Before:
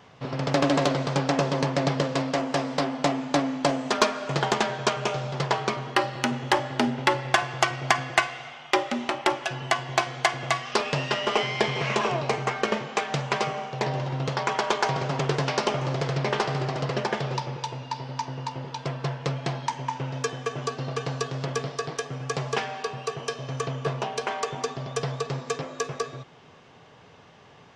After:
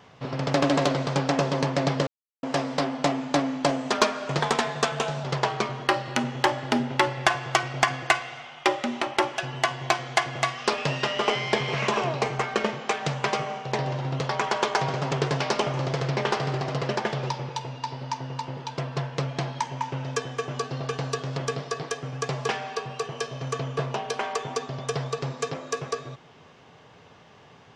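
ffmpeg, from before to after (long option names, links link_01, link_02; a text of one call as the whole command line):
ffmpeg -i in.wav -filter_complex "[0:a]asplit=5[link_01][link_02][link_03][link_04][link_05];[link_01]atrim=end=2.07,asetpts=PTS-STARTPTS,afade=type=out:start_time=2.066:duration=0.004:curve=hsin[link_06];[link_02]atrim=start=2.07:end=2.43,asetpts=PTS-STARTPTS,volume=0[link_07];[link_03]atrim=start=2.43:end=4.394,asetpts=PTS-STARTPTS,afade=type=in:duration=0.004:curve=hsin[link_08];[link_04]atrim=start=4.39:end=5.31,asetpts=PTS-STARTPTS,asetrate=48069,aresample=44100,atrim=end_sample=37222,asetpts=PTS-STARTPTS[link_09];[link_05]atrim=start=5.306[link_10];[link_06][link_07][link_08]concat=n=3:v=0:a=1[link_11];[link_11][link_09]acrossfade=duration=0.004:curve1=hsin:curve2=hsin[link_12];[link_12][link_10]acrossfade=duration=0.004:curve1=hsin:curve2=hsin" out.wav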